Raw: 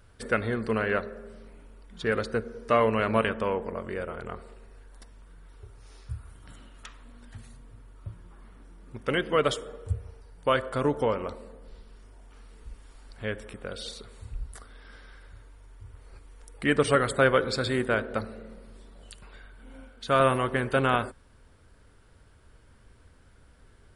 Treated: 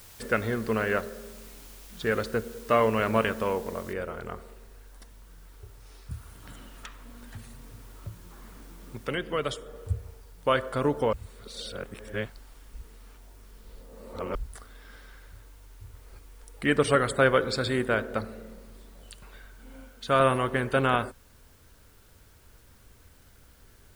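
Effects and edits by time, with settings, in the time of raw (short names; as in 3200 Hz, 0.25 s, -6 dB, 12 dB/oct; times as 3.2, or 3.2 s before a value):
3.93 noise floor step -51 dB -63 dB
6.11–9.76 three-band squash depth 40%
11.13–14.35 reverse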